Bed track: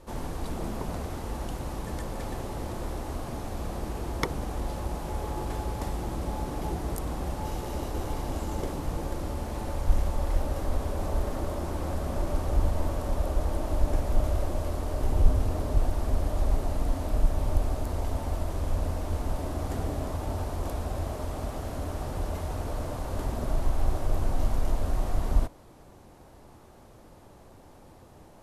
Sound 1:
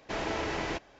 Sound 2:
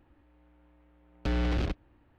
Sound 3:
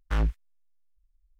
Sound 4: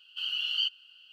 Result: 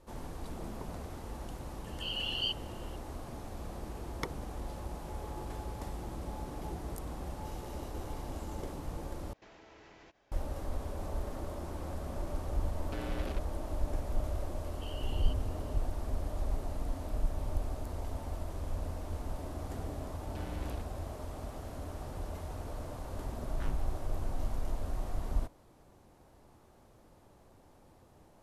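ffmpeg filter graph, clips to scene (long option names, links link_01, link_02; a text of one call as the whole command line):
ffmpeg -i bed.wav -i cue0.wav -i cue1.wav -i cue2.wav -i cue3.wav -filter_complex "[4:a]asplit=2[link_01][link_02];[2:a]asplit=2[link_03][link_04];[0:a]volume=-8.5dB[link_05];[1:a]acompressor=threshold=-41dB:ratio=6:attack=3.2:release=140:knee=1:detection=peak[link_06];[link_03]highpass=210[link_07];[link_02]acompressor=threshold=-34dB:ratio=6:attack=3.2:release=140:knee=1:detection=peak[link_08];[link_05]asplit=2[link_09][link_10];[link_09]atrim=end=9.334[link_11];[link_06]atrim=end=0.99,asetpts=PTS-STARTPTS,volume=-12.5dB[link_12];[link_10]atrim=start=10.316[link_13];[link_01]atrim=end=1.12,asetpts=PTS-STARTPTS,volume=-5dB,afade=type=in:duration=0.004:curve=hsin,afade=type=out:start_time=1.116:duration=0.004:curve=hsin,adelay=1840[link_14];[link_07]atrim=end=2.18,asetpts=PTS-STARTPTS,volume=-8.5dB,afade=type=in:duration=0.004:curve=hsin,afade=type=out:start_time=2.176:duration=0.004:curve=hsin,adelay=11670[link_15];[link_08]atrim=end=1.12,asetpts=PTS-STARTPTS,volume=-13.5dB,afade=type=in:duration=0.004:curve=hsin,afade=type=out:start_time=1.116:duration=0.004:curve=hsin,adelay=14650[link_16];[link_04]atrim=end=2.18,asetpts=PTS-STARTPTS,volume=-14dB,afade=type=in:duration=0.004:curve=hsin,afade=type=out:start_time=2.176:duration=0.004:curve=hsin,adelay=19100[link_17];[3:a]atrim=end=1.39,asetpts=PTS-STARTPTS,volume=-13.5dB,afade=type=in:duration=0.004:curve=hsin,afade=type=out:start_time=1.386:duration=0.004:curve=hsin,adelay=23490[link_18];[link_11][link_12]acrossfade=duration=0.004:curve1=hsin:curve2=hsin[link_19];[link_19][link_13]acrossfade=duration=0.004:curve1=hsin:curve2=hsin[link_20];[link_20][link_14][link_15][link_16][link_17][link_18]amix=inputs=6:normalize=0" out.wav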